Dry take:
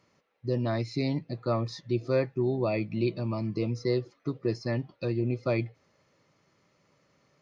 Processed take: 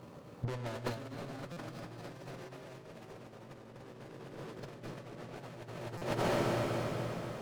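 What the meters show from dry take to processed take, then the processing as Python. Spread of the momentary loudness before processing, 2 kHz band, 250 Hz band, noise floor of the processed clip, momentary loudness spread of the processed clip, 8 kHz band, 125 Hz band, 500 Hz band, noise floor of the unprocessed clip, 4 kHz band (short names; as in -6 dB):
5 LU, -3.5 dB, -11.0 dB, -53 dBFS, 18 LU, n/a, -10.0 dB, -9.5 dB, -70 dBFS, -4.0 dB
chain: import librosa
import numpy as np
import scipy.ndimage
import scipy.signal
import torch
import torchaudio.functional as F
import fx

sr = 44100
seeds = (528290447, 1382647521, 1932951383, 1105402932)

y = scipy.signal.medfilt(x, 25)
y = fx.tube_stage(y, sr, drive_db=45.0, bias=0.35)
y = fx.echo_pitch(y, sr, ms=755, semitones=3, count=2, db_per_echo=-3.0)
y = fx.hum_notches(y, sr, base_hz=50, count=9)
y = fx.echo_feedback(y, sr, ms=247, feedback_pct=53, wet_db=-3.0)
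y = fx.rev_plate(y, sr, seeds[0], rt60_s=4.5, hf_ratio=0.95, predelay_ms=0, drr_db=-0.5)
y = fx.over_compress(y, sr, threshold_db=-49.0, ratio=-0.5)
y = fx.buffer_glitch(y, sr, at_s=(1.52, 5.97), block=256, repeats=7)
y = F.gain(torch.from_numpy(y), 10.0).numpy()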